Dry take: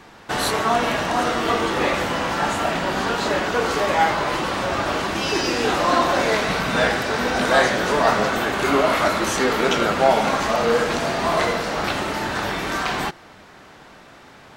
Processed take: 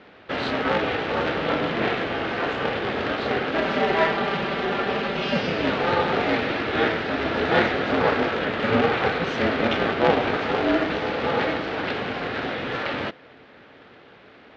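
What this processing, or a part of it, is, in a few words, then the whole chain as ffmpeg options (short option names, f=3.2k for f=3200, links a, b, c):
ring modulator pedal into a guitar cabinet: -filter_complex "[0:a]aeval=exprs='val(0)*sgn(sin(2*PI*170*n/s))':c=same,lowpass=11k,highpass=89,equalizer=f=260:t=q:w=4:g=5,equalizer=f=460:t=q:w=4:g=4,equalizer=f=1k:t=q:w=4:g=-7,lowpass=f=3.7k:w=0.5412,lowpass=f=3.7k:w=1.3066,asettb=1/sr,asplit=3[a][b][c];[a]atrim=end=3.554[d];[b]atrim=start=3.55:end=5.39,asetpts=PTS-STARTPTS,afade=t=in:d=0.004:c=qsin,afade=t=out:st=1.836:d=0.004:c=qsin,aecho=1:1:5.1:0.65,atrim=end_sample=81144[e];[c]atrim=start=5.386[f];[d][e]acrossfade=d=0.004:c1=hsin:c2=qsin[g];[g][f]acrossfade=d=0.004:c1=qsin:c2=hsin,volume=-3dB"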